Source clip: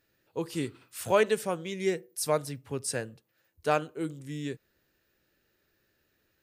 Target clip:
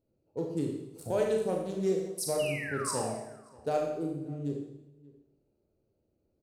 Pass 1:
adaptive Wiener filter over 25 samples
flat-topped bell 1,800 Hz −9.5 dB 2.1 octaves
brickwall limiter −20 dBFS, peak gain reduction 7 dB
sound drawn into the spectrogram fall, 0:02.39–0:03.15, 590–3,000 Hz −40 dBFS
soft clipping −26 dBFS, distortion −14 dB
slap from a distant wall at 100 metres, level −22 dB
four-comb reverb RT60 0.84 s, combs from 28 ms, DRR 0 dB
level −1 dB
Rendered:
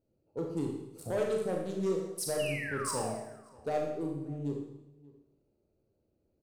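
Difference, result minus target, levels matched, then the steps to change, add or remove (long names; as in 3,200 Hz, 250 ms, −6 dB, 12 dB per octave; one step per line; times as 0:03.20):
soft clipping: distortion +18 dB
change: soft clipping −14.5 dBFS, distortion −33 dB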